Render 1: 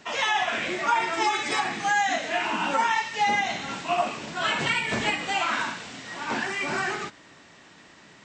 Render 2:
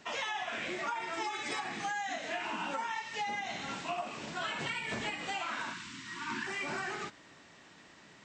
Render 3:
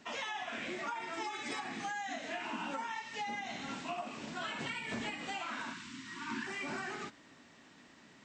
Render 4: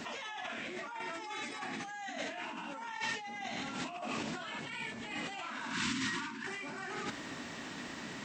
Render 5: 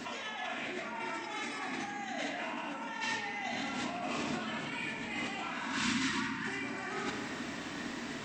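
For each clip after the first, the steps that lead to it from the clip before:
time-frequency box 5.73–6.47 s, 370–900 Hz -30 dB; compression, threshold -28 dBFS, peak gain reduction 10 dB; trim -5.5 dB
peaking EQ 250 Hz +8.5 dB 0.41 oct; trim -3.5 dB
compressor with a negative ratio -49 dBFS, ratio -1; trim +8 dB
reverberation RT60 2.0 s, pre-delay 3 ms, DRR 0.5 dB

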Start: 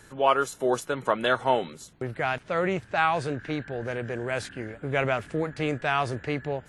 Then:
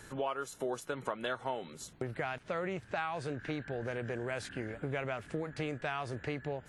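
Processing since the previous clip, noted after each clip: compression 5:1, threshold -34 dBFS, peak gain reduction 16.5 dB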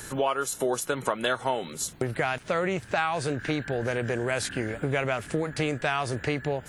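treble shelf 6 kHz +11.5 dB; trim +9 dB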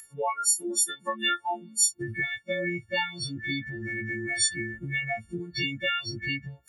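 partials quantised in pitch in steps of 4 st; spectral noise reduction 28 dB; trim -3 dB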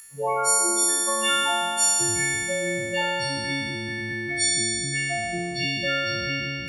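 spectral sustain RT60 2.66 s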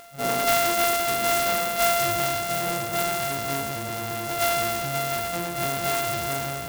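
sorted samples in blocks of 64 samples; sampling jitter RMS 0.052 ms

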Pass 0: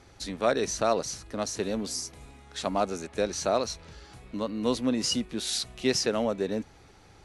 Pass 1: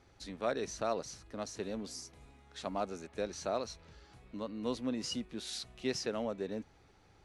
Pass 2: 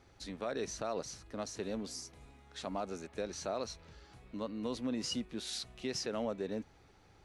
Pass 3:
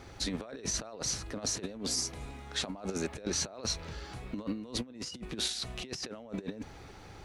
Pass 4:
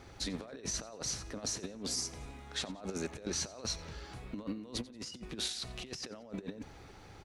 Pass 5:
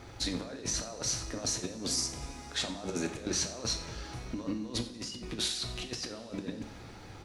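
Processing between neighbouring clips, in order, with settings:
treble shelf 7.3 kHz -8 dB; trim -9 dB
peak limiter -27.5 dBFS, peak gain reduction 7 dB; trim +1 dB
compressor with a negative ratio -44 dBFS, ratio -0.5; trim +8 dB
feedback delay 90 ms, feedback 40%, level -20 dB; trim -3.5 dB
two-slope reverb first 0.47 s, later 4.2 s, from -18 dB, DRR 5.5 dB; trim +3.5 dB

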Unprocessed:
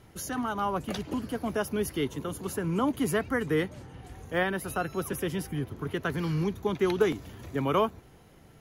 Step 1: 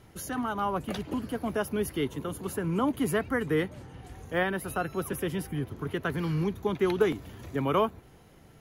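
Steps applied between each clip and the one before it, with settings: dynamic bell 5.9 kHz, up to -5 dB, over -57 dBFS, Q 1.3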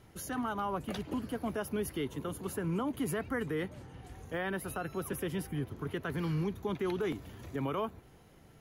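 peak limiter -22 dBFS, peak gain reduction 9.5 dB; trim -3.5 dB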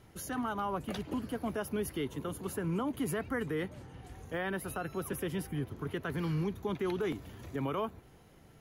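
no audible change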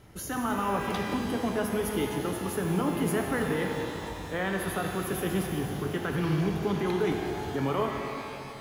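pitch-shifted reverb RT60 2.9 s, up +12 st, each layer -8 dB, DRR 1.5 dB; trim +4 dB

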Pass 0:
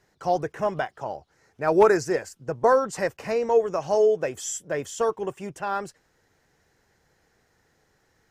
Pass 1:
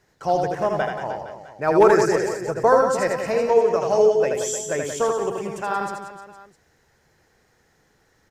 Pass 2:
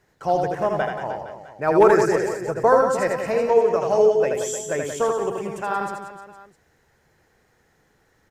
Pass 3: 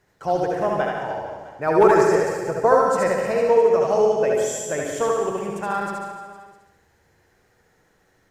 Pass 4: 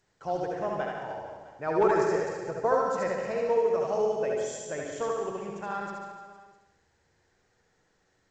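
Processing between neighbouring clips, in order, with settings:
reverse bouncing-ball echo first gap 80 ms, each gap 1.25×, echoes 5; trim +2 dB
peaking EQ 5.3 kHz -4.5 dB 0.96 oct
flutter echo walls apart 11.9 m, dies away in 0.88 s; trim -1 dB
trim -9 dB; G.722 64 kbps 16 kHz

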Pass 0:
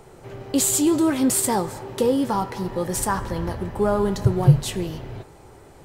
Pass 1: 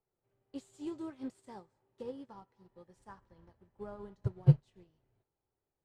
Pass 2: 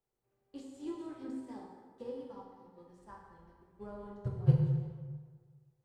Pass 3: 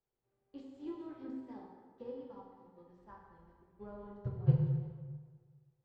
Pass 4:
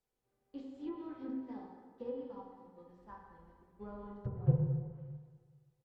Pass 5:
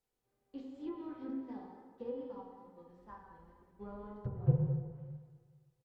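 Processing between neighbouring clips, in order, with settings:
distance through air 76 m; upward expansion 2.5:1, over -31 dBFS; trim -7.5 dB
plate-style reverb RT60 1.6 s, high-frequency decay 0.6×, DRR -1.5 dB; trim -3.5 dB
distance through air 180 m; trim -2 dB
low-pass that closes with the level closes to 1.1 kHz, closed at -34.5 dBFS; comb 4 ms, depth 30%; trim +1.5 dB
speakerphone echo 180 ms, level -14 dB; wow and flutter 28 cents

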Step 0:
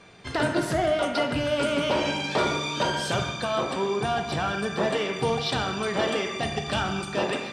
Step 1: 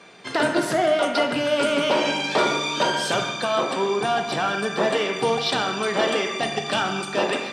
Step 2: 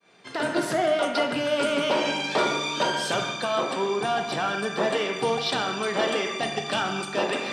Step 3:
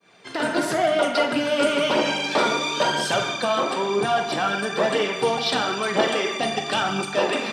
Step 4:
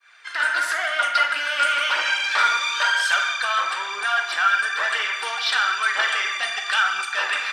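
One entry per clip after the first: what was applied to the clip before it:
Bessel high-pass 230 Hz, order 4; trim +4.5 dB
fade-in on the opening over 0.60 s; reverse; upward compressor, threshold -23 dBFS; reverse; trim -3 dB
phaser 1 Hz, delay 4.7 ms, feedback 35%; doubling 45 ms -13 dB; trim +2.5 dB
resonant high-pass 1.5 kHz, resonance Q 3

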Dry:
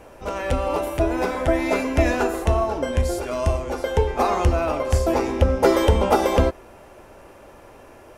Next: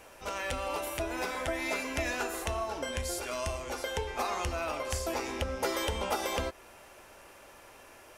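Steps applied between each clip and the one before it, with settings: tilt shelf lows -7.5 dB, about 1.1 kHz; compression 2:1, threshold -27 dBFS, peak gain reduction 7.5 dB; trim -5.5 dB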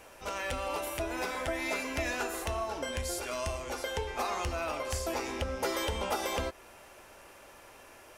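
saturation -19 dBFS, distortion -25 dB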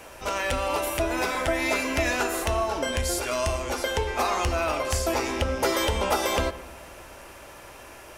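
hum 60 Hz, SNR 32 dB; on a send at -14 dB: reverberation RT60 1.6 s, pre-delay 3 ms; on the sum: trim +8 dB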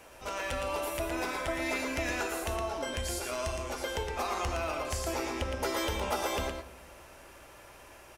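delay 115 ms -5.5 dB; trim -8.5 dB

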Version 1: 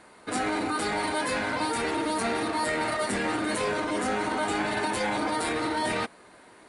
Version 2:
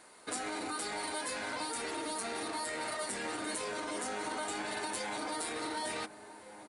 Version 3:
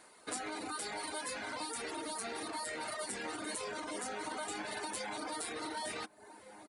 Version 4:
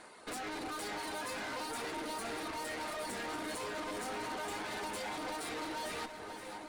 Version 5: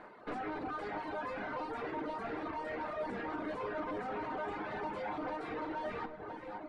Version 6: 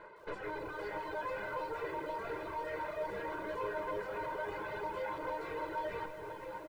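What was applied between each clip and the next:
tone controls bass -7 dB, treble +9 dB; compression, threshold -29 dBFS, peak gain reduction 7 dB; echo from a far wall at 250 m, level -11 dB; trim -5.5 dB
reverb removal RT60 0.64 s; trim -1.5 dB
treble shelf 7.1 kHz -11.5 dB; valve stage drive 47 dB, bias 0.5; on a send: echo whose repeats swap between lows and highs 260 ms, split 1.3 kHz, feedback 79%, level -8 dB; on the sum: trim +8.5 dB
low-pass 1.6 kHz 12 dB/octave; reverb removal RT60 0.98 s; simulated room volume 250 m³, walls mixed, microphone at 0.37 m; trim +3.5 dB
comb 2 ms, depth 98%; bit-crushed delay 161 ms, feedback 80%, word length 9-bit, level -12.5 dB; trim -3.5 dB

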